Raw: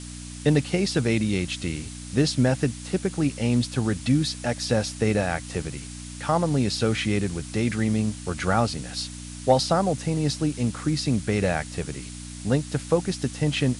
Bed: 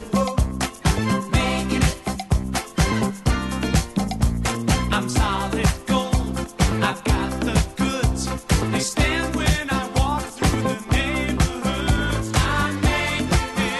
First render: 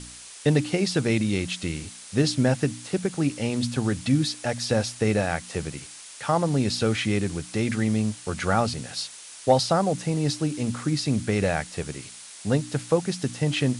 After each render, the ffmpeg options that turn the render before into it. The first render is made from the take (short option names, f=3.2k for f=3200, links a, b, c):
-af "bandreject=f=60:t=h:w=4,bandreject=f=120:t=h:w=4,bandreject=f=180:t=h:w=4,bandreject=f=240:t=h:w=4,bandreject=f=300:t=h:w=4"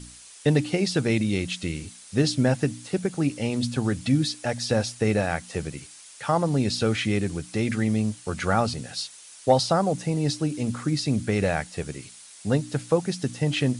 -af "afftdn=nr=6:nf=-44"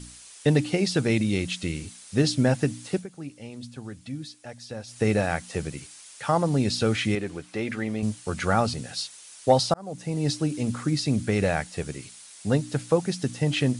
-filter_complex "[0:a]asettb=1/sr,asplit=3[a][b][c];[a]atrim=end=7.154[d];[b]atrim=start=7.15:end=8.03,asetpts=PTS-STARTPTS,afade=t=in:d=0.004:c=qsin,afade=t=out:st=0.876:d=0.004:c=qsin,bass=f=250:g=-10,treble=f=4k:g=-10[e];[c]atrim=start=8.026[f];[d][e]acrossfade=d=0.004:c1=hsin:c2=qsin[g];[g][f]acrossfade=d=0.004:c1=qsin:c2=hsin,asplit=4[h][i][j][k];[h]atrim=end=3.06,asetpts=PTS-STARTPTS,afade=t=out:st=2.94:d=0.12:silence=0.211349[l];[i]atrim=start=3.06:end=4.87,asetpts=PTS-STARTPTS,volume=-13.5dB[m];[j]atrim=start=4.87:end=9.74,asetpts=PTS-STARTPTS,afade=t=in:d=0.12:silence=0.211349,afade=t=out:st=4.866:d=0.004:c=hsin[n];[k]atrim=start=9.74,asetpts=PTS-STARTPTS,afade=t=in:d=0.56[o];[l][m][n][o]concat=n=4:v=0:a=1"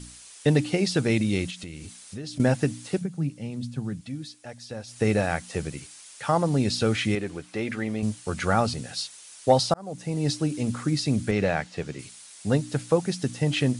-filter_complex "[0:a]asettb=1/sr,asplit=3[a][b][c];[a]atrim=end=1.504[d];[b]atrim=start=1.5:end=2.4,asetpts=PTS-STARTPTS,afade=t=in:d=0.004:c=qsin,afade=t=out:st=0.896:d=0.004:c=qsin,acompressor=threshold=-35dB:ratio=4:attack=3.2:release=140:knee=1:detection=peak[e];[c]atrim=start=2.396[f];[d][e]acrossfade=d=0.004:c1=hsin:c2=qsin[g];[g][f]acrossfade=d=0.004:c1=qsin:c2=hsin,asettb=1/sr,asplit=3[h][i][j];[h]atrim=end=3.014[k];[i]atrim=start=3.01:end=4.01,asetpts=PTS-STARTPTS,afade=t=in:d=0.004:c=qsin,afade=t=out:st=0.996:d=0.004:c=qsin,equalizer=f=160:w=1.4:g=15[l];[j]atrim=start=4.006[m];[k][l]acrossfade=d=0.004:c1=hsin:c2=qsin[n];[n][m]acrossfade=d=0.004:c1=qsin:c2=hsin,asettb=1/sr,asplit=3[o][p][q];[o]atrim=end=11.314[r];[p]atrim=start=11.31:end=11.99,asetpts=PTS-STARTPTS,afade=t=in:d=0.004:c=qsin,afade=t=out:st=0.676:d=0.004:c=qsin,highpass=100,lowpass=5.2k[s];[q]atrim=start=11.986[t];[r][s]acrossfade=d=0.004:c1=hsin:c2=qsin[u];[u][t]acrossfade=d=0.004:c1=qsin:c2=hsin"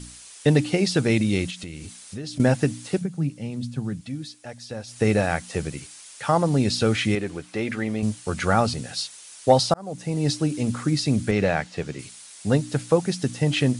-af "volume=2.5dB"